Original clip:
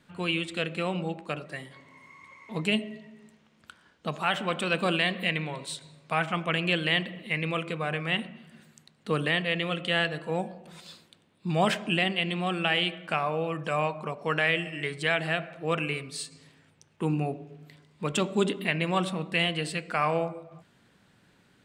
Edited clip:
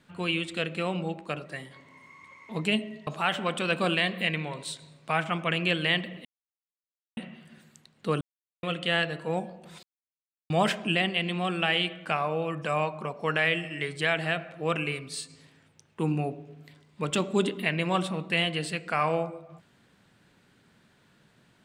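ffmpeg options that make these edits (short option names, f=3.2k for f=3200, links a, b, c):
-filter_complex "[0:a]asplit=8[a][b][c][d][e][f][g][h];[a]atrim=end=3.072[i];[b]atrim=start=4.088:end=7.27,asetpts=PTS-STARTPTS,afade=t=out:st=3.178:d=0.004:c=hsin[j];[c]atrim=start=7.27:end=8.19,asetpts=PTS-STARTPTS,volume=0[k];[d]atrim=start=8.19:end=9.23,asetpts=PTS-STARTPTS,afade=t=in:d=0.004:c=hsin,afade=t=out:st=1.036:d=0.004:c=hsin[l];[e]atrim=start=9.23:end=9.65,asetpts=PTS-STARTPTS,volume=0[m];[f]atrim=start=9.65:end=10.85,asetpts=PTS-STARTPTS,afade=t=in:d=0.004:c=hsin,afade=t=out:st=1.196:d=0.004:c=hsin[n];[g]atrim=start=10.85:end=11.52,asetpts=PTS-STARTPTS,volume=0[o];[h]atrim=start=11.52,asetpts=PTS-STARTPTS,afade=t=in:d=0.004:c=hsin[p];[j][k][l][m][n][o][p]concat=n=7:v=0:a=1[q];[i][q]acrossfade=d=0.004:c1=hsin:c2=hsin"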